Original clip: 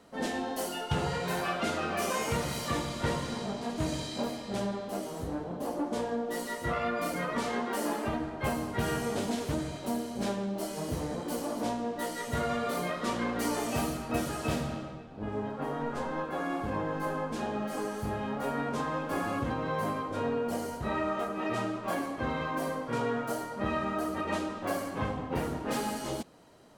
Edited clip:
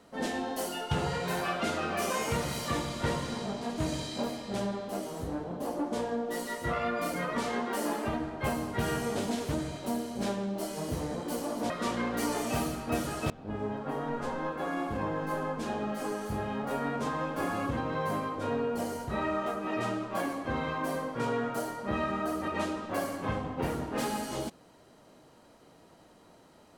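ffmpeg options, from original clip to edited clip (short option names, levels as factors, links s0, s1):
-filter_complex "[0:a]asplit=3[s0][s1][s2];[s0]atrim=end=11.702[s3];[s1]atrim=start=12.918:end=14.522[s4];[s2]atrim=start=15.028[s5];[s3][s4]acrossfade=d=0.004:c1=hsin:c2=hsin[s6];[s6][s5]acrossfade=d=0.004:c1=hsin:c2=hsin"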